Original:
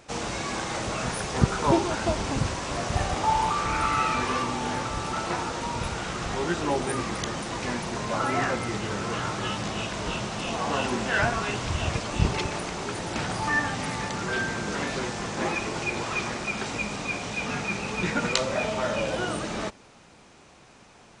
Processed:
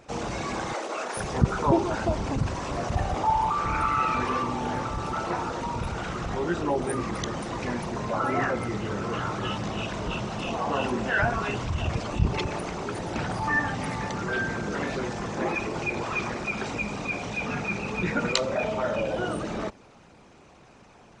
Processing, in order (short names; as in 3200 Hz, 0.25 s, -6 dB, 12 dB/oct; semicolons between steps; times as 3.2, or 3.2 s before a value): formant sharpening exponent 1.5; 0.73–1.17 HPF 330 Hz 24 dB/oct